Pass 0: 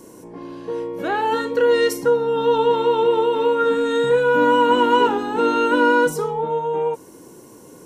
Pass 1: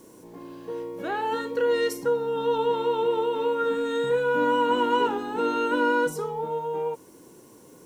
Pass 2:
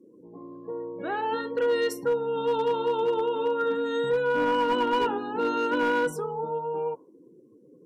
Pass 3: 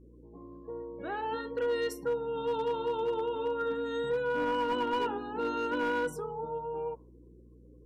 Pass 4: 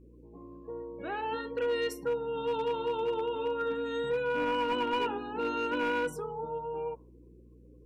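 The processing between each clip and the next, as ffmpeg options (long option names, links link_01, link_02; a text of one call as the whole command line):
ffmpeg -i in.wav -af "acrusher=bits=8:mix=0:aa=0.000001,volume=-7dB" out.wav
ffmpeg -i in.wav -af "afftdn=noise_reduction=31:noise_floor=-44,asoftclip=type=hard:threshold=-18dB,volume=-1dB" out.wav
ffmpeg -i in.wav -af "aeval=exprs='val(0)+0.00355*(sin(2*PI*60*n/s)+sin(2*PI*2*60*n/s)/2+sin(2*PI*3*60*n/s)/3+sin(2*PI*4*60*n/s)/4+sin(2*PI*5*60*n/s)/5)':channel_layout=same,volume=-6dB" out.wav
ffmpeg -i in.wav -af "equalizer=frequency=2500:width=4.7:gain=10" out.wav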